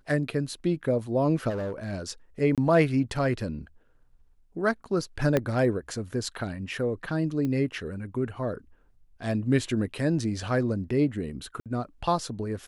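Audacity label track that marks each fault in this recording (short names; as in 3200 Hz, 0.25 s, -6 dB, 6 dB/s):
1.490000	1.940000	clipped -28 dBFS
2.550000	2.580000	gap 27 ms
5.370000	5.370000	pop -11 dBFS
7.450000	7.450000	pop -20 dBFS
11.600000	11.660000	gap 57 ms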